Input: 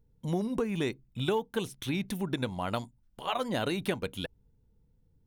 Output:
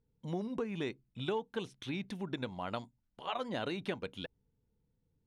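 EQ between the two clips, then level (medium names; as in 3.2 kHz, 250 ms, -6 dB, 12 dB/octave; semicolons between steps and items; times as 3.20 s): low-pass 5.2 kHz 12 dB/octave; bass shelf 80 Hz -11 dB; -5.5 dB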